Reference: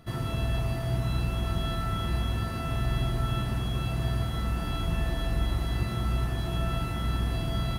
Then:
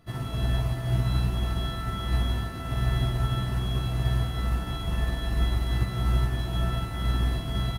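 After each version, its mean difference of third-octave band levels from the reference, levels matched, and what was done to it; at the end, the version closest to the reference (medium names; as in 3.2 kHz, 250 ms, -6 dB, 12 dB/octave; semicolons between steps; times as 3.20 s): 2.0 dB: doubling 16 ms -4 dB; upward expansion 1.5:1, over -35 dBFS; trim +1.5 dB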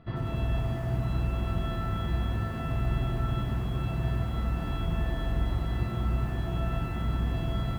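3.5 dB: distance through air 350 m; bit-crushed delay 95 ms, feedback 80%, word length 8-bit, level -13 dB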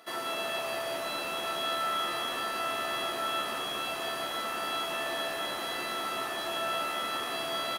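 9.5 dB: Bessel high-pass 560 Hz, order 4; on a send: frequency-shifting echo 189 ms, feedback 50%, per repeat -74 Hz, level -9.5 dB; on the sum: trim +5.5 dB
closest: first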